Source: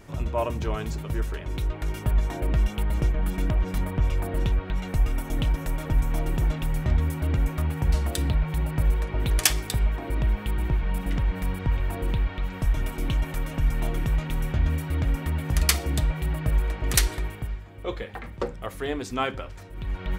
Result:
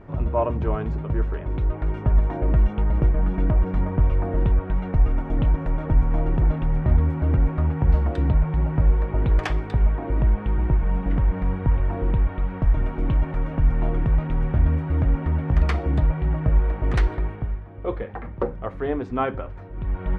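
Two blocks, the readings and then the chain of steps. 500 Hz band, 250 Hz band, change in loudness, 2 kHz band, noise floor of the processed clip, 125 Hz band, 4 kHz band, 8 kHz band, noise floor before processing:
+4.5 dB, +4.5 dB, +4.0 dB, -3.0 dB, -35 dBFS, +4.5 dB, -13.5 dB, under -25 dB, -39 dBFS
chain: LPF 1300 Hz 12 dB/oct; gain +4.5 dB

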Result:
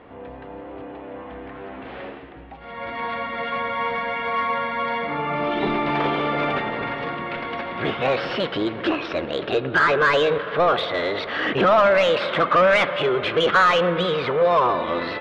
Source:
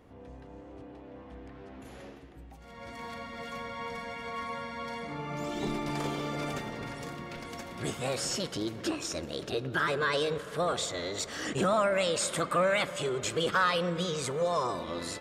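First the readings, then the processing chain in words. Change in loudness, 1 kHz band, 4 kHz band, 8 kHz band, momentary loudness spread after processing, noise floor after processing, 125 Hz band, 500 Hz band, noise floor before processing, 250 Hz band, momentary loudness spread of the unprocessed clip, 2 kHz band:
+10.5 dB, +12.5 dB, +7.5 dB, under -10 dB, 20 LU, -38 dBFS, +5.5 dB, +11.0 dB, -49 dBFS, +8.5 dB, 21 LU, +12.0 dB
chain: inverse Chebyshev low-pass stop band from 6700 Hz, stop band 40 dB; overdrive pedal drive 14 dB, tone 2400 Hz, clips at -15.5 dBFS; gain +8 dB

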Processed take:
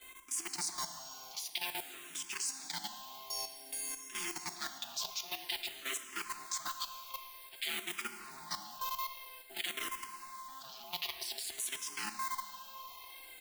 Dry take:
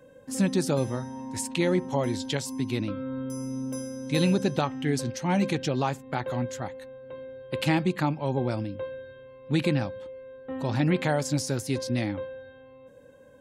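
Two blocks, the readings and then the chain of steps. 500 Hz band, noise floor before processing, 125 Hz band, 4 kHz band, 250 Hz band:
-25.5 dB, -51 dBFS, -36.5 dB, -1.5 dB, -29.5 dB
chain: soft clip -25 dBFS, distortion -9 dB; weighting filter D; reverse; compressor 10:1, threshold -40 dBFS, peak gain reduction 19.5 dB; reverse; comb 5.8 ms, depth 53%; modulation noise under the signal 16 dB; wow and flutter 21 cents; ring modulator 530 Hz; tilt +3.5 dB/oct; level quantiser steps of 14 dB; plate-style reverb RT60 2.9 s, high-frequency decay 0.9×, DRR 9 dB; endless phaser -0.52 Hz; gain +7.5 dB

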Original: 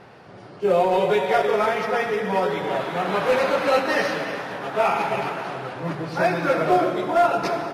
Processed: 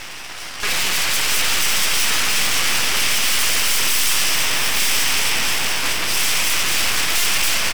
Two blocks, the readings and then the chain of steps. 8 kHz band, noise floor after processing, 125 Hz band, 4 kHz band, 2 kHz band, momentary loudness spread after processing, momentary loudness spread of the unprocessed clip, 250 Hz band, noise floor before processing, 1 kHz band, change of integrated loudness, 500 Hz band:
+28.0 dB, -32 dBFS, -3.0 dB, +18.5 dB, +8.0 dB, 3 LU, 9 LU, -8.0 dB, -43 dBFS, -5.5 dB, +5.5 dB, -14.5 dB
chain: minimum comb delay 0.37 ms; bell 8800 Hz +13.5 dB 2.2 oct; in parallel at +3 dB: limiter -17.5 dBFS, peak gain reduction 11 dB; on the sum: sine folder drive 16 dB, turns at -5.5 dBFS; HPF 1100 Hz 24 dB/oct; half-wave rectifier; on a send: echo 0.683 s -6 dB; on the sum: gain -5.5 dB

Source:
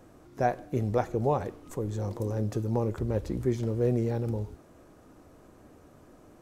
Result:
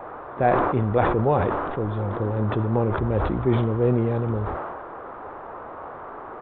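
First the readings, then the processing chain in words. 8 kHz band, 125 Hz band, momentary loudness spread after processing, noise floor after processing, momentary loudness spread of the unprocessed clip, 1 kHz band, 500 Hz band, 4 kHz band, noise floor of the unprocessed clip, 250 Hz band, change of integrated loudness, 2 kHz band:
under -30 dB, +6.5 dB, 17 LU, -38 dBFS, 7 LU, +10.0 dB, +7.0 dB, +7.0 dB, -56 dBFS, +6.5 dB, +7.0 dB, +11.5 dB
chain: downsampling 8000 Hz; band noise 350–1300 Hz -43 dBFS; sustainer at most 29 dB/s; gain +5 dB

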